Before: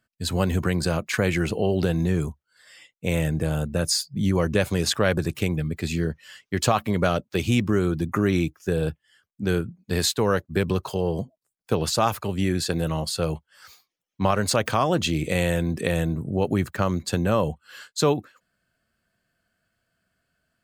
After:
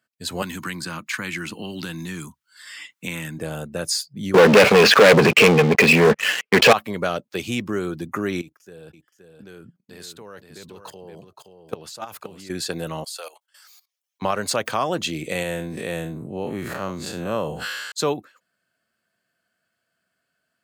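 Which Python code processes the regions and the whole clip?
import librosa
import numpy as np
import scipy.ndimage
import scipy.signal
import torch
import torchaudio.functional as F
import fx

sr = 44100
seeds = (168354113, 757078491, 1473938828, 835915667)

y = fx.chain(x, sr, fx.highpass(hz=160.0, slope=6),
    fx.band_shelf(hz=540.0, db=-14.0, octaves=1.2),
    fx.band_squash(depth_pct=70), at=(0.42, 3.39))
y = fx.chain(y, sr, fx.transient(attack_db=1, sustain_db=10),
    fx.cabinet(low_hz=180.0, low_slope=12, high_hz=4000.0, hz=(210.0, 310.0, 460.0, 910.0, 2500.0, 3700.0), db=(4, -9, 9, -7, 7, -10)),
    fx.leveller(passes=5), at=(4.34, 6.73))
y = fx.chain(y, sr, fx.level_steps(step_db=19),
    fx.echo_single(ms=522, db=-7.0), at=(8.41, 12.5))
y = fx.chain(y, sr, fx.highpass(hz=550.0, slope=24),
    fx.high_shelf(hz=3700.0, db=11.0),
    fx.level_steps(step_db=17), at=(13.04, 14.22))
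y = fx.chain(y, sr, fx.spec_blur(span_ms=106.0),
    fx.sustainer(db_per_s=26.0), at=(15.43, 17.92))
y = scipy.signal.sosfilt(scipy.signal.butter(2, 110.0, 'highpass', fs=sr, output='sos'), y)
y = fx.low_shelf(y, sr, hz=200.0, db=-10.0)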